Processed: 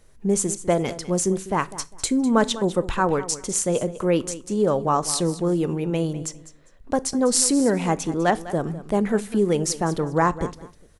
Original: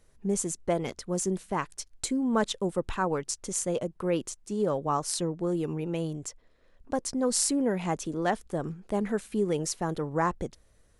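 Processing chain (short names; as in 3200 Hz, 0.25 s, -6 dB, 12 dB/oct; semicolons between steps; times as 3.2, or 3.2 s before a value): feedback echo 0.201 s, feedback 21%, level -15.5 dB; on a send at -17.5 dB: reverb RT60 0.35 s, pre-delay 18 ms; on the sum: gain +7 dB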